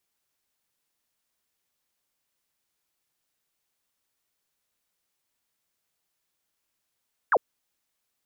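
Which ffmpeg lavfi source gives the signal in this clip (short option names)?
-f lavfi -i "aevalsrc='0.15*clip(t/0.002,0,1)*clip((0.05-t)/0.002,0,1)*sin(2*PI*1800*0.05/log(400/1800)*(exp(log(400/1800)*t/0.05)-1))':d=0.05:s=44100"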